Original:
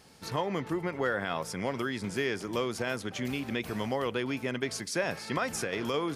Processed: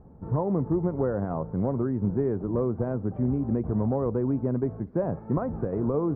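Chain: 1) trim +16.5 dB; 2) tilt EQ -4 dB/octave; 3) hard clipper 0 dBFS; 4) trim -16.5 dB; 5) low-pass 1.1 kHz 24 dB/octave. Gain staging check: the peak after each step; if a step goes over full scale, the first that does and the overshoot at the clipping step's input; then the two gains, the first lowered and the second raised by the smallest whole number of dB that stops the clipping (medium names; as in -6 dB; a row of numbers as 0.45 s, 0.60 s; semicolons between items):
-0.5 dBFS, +4.5 dBFS, 0.0 dBFS, -16.5 dBFS, -16.0 dBFS; step 2, 4.5 dB; step 1 +11.5 dB, step 4 -11.5 dB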